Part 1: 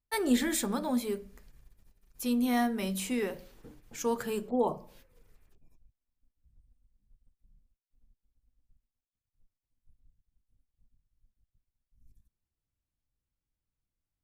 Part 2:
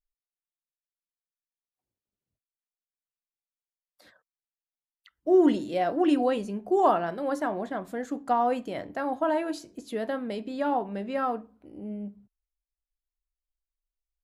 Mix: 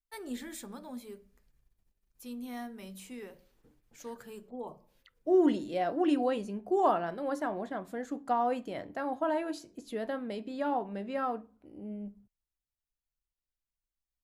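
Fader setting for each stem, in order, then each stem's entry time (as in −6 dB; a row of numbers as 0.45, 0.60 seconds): −13.0, −4.5 decibels; 0.00, 0.00 seconds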